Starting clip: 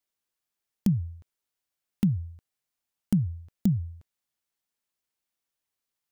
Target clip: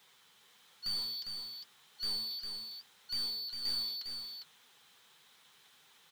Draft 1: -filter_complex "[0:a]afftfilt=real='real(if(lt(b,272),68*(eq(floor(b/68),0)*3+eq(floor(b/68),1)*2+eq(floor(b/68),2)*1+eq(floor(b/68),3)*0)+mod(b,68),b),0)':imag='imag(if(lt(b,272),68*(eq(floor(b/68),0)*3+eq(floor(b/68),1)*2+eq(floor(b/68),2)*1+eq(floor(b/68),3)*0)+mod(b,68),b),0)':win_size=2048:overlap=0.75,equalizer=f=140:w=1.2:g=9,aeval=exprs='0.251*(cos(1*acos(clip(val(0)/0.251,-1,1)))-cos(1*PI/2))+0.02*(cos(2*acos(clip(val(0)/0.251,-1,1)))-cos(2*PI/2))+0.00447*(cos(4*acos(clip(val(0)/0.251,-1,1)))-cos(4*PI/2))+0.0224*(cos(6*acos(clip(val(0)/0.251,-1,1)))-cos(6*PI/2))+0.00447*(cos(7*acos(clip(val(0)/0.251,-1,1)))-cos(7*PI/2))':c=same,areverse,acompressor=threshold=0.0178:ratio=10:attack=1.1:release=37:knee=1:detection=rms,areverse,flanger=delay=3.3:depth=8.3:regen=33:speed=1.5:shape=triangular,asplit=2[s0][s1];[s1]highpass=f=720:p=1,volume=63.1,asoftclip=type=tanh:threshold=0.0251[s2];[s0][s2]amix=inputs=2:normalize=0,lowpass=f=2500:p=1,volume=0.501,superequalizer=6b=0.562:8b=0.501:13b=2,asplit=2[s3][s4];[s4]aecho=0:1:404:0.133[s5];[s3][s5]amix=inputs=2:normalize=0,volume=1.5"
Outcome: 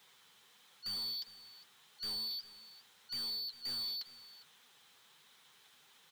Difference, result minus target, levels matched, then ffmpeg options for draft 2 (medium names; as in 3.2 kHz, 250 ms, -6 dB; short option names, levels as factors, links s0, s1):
compression: peak gain reduction +10 dB; echo-to-direct -11.5 dB
-filter_complex "[0:a]afftfilt=real='real(if(lt(b,272),68*(eq(floor(b/68),0)*3+eq(floor(b/68),1)*2+eq(floor(b/68),2)*1+eq(floor(b/68),3)*0)+mod(b,68),b),0)':imag='imag(if(lt(b,272),68*(eq(floor(b/68),0)*3+eq(floor(b/68),1)*2+eq(floor(b/68),2)*1+eq(floor(b/68),3)*0)+mod(b,68),b),0)':win_size=2048:overlap=0.75,equalizer=f=140:w=1.2:g=9,aeval=exprs='0.251*(cos(1*acos(clip(val(0)/0.251,-1,1)))-cos(1*PI/2))+0.02*(cos(2*acos(clip(val(0)/0.251,-1,1)))-cos(2*PI/2))+0.00447*(cos(4*acos(clip(val(0)/0.251,-1,1)))-cos(4*PI/2))+0.0224*(cos(6*acos(clip(val(0)/0.251,-1,1)))-cos(6*PI/2))+0.00447*(cos(7*acos(clip(val(0)/0.251,-1,1)))-cos(7*PI/2))':c=same,areverse,acompressor=threshold=0.0631:ratio=10:attack=1.1:release=37:knee=1:detection=rms,areverse,flanger=delay=3.3:depth=8.3:regen=33:speed=1.5:shape=triangular,asplit=2[s0][s1];[s1]highpass=f=720:p=1,volume=63.1,asoftclip=type=tanh:threshold=0.0251[s2];[s0][s2]amix=inputs=2:normalize=0,lowpass=f=2500:p=1,volume=0.501,superequalizer=6b=0.562:8b=0.501:13b=2,asplit=2[s3][s4];[s4]aecho=0:1:404:0.501[s5];[s3][s5]amix=inputs=2:normalize=0,volume=1.5"